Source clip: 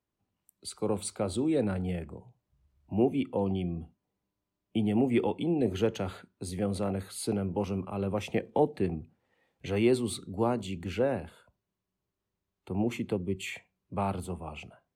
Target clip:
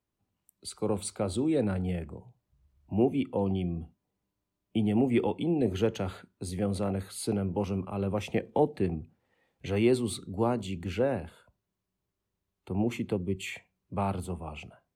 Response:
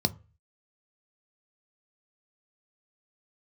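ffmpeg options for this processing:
-af "lowshelf=f=120:g=3.5"

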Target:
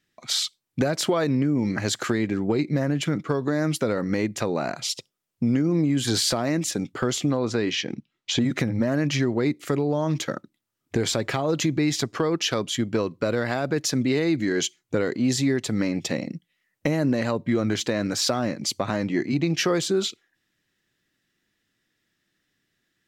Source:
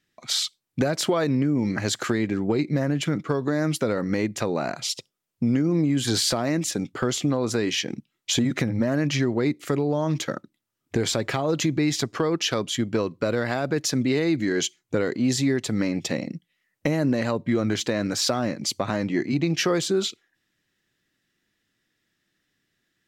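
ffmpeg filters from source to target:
-filter_complex "[0:a]asettb=1/sr,asplit=3[s0][s1][s2];[s0]atrim=end=7.394[s3];[s1]atrim=start=7.39:end=8.42,asetpts=PTS-STARTPTS,afade=t=in:d=0.004:c=qsin,afade=t=out:st=1.026:d=0.004:c=qsin,lowpass=5200[s4];[s2]atrim=start=8.416[s5];[s3][s4]acrossfade=d=0.004:c1=hsin:c2=qsin[s6];[s6][s5]acrossfade=d=0.004:c1=qsin:c2=hsin"

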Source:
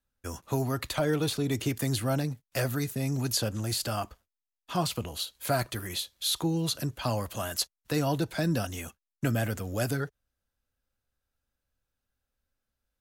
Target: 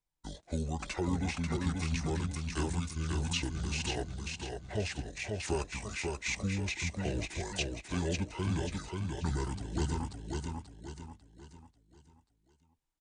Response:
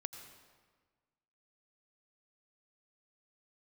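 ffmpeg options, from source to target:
-af "aecho=1:1:539|1078|1617|2156|2695:0.668|0.274|0.112|0.0461|0.0189,asetrate=26222,aresample=44100,atempo=1.68179,volume=0.531"

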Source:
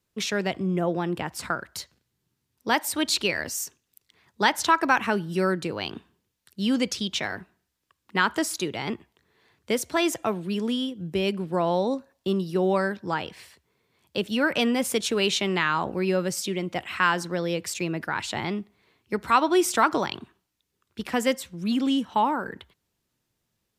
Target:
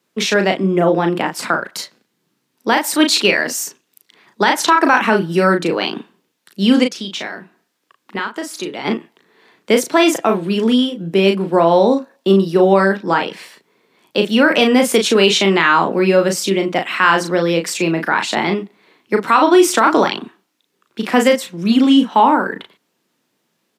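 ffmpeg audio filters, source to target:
-filter_complex "[0:a]highpass=f=190:w=0.5412,highpass=f=190:w=1.3066,highshelf=f=4700:g=-6.5,asplit=3[s0][s1][s2];[s0]afade=t=out:st=6.83:d=0.02[s3];[s1]acompressor=threshold=0.0112:ratio=2.5,afade=t=in:st=6.83:d=0.02,afade=t=out:st=8.84:d=0.02[s4];[s2]afade=t=in:st=8.84:d=0.02[s5];[s3][s4][s5]amix=inputs=3:normalize=0,asplit=2[s6][s7];[s7]adelay=36,volume=0.531[s8];[s6][s8]amix=inputs=2:normalize=0,alimiter=level_in=4.47:limit=0.891:release=50:level=0:latency=1,volume=0.891"

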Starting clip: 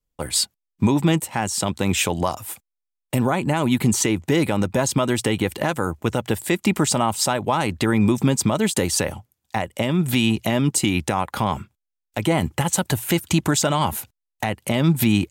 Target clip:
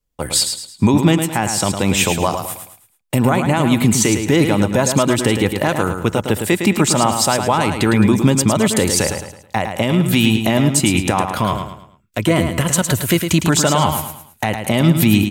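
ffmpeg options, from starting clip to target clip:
-filter_complex "[0:a]asettb=1/sr,asplit=3[s0][s1][s2];[s0]atrim=end=11.314[s3];[s1]atrim=start=11.31:end=13.45,asetpts=PTS-STARTPTS,afade=t=in:d=0.004:c=qsin,afade=t=out:st=2.136:d=0.004:c=qsin,asuperstop=centerf=820:order=4:qfactor=5.1[s4];[s2]atrim=start=13.446[s5];[s3][s4]acrossfade=d=0.004:c1=hsin:c2=qsin[s6];[s6][s5]acrossfade=d=0.004:c1=qsin:c2=hsin,aecho=1:1:108|216|324|432:0.447|0.165|0.0612|0.0226,volume=1.68"

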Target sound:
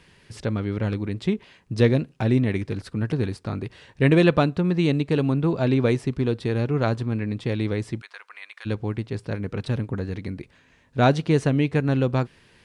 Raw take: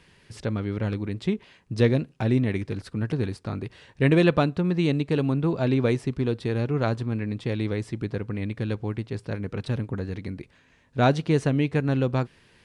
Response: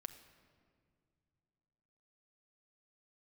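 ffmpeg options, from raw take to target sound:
-filter_complex "[0:a]asplit=3[s0][s1][s2];[s0]afade=t=out:st=8:d=0.02[s3];[s1]highpass=f=1000:w=0.5412,highpass=f=1000:w=1.3066,afade=t=in:st=8:d=0.02,afade=t=out:st=8.65:d=0.02[s4];[s2]afade=t=in:st=8.65:d=0.02[s5];[s3][s4][s5]amix=inputs=3:normalize=0,volume=1.26"

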